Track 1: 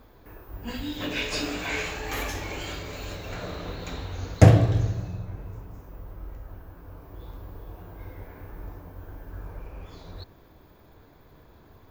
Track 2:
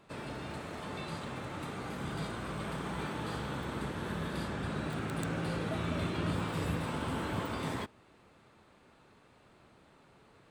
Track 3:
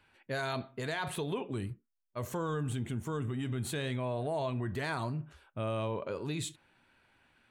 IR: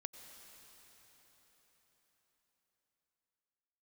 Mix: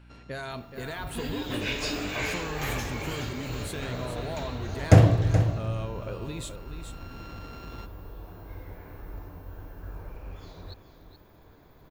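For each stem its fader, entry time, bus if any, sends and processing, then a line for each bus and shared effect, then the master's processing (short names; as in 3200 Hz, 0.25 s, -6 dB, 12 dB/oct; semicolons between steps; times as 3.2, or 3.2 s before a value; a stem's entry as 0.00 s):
-1.5 dB, 0.50 s, no send, echo send -11 dB, dry
-9.5 dB, 0.00 s, send -4 dB, no echo send, sample sorter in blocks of 32 samples; LPF 5700 Hz 24 dB/oct; limiter -29 dBFS, peak gain reduction 7.5 dB; auto duck -15 dB, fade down 0.20 s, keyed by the third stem
+2.5 dB, 0.00 s, no send, echo send -8.5 dB, compressor 3:1, threshold -37 dBFS, peak gain reduction 6 dB; hum 60 Hz, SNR 14 dB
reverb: on, RT60 5.0 s, pre-delay 83 ms
echo: echo 0.425 s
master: dry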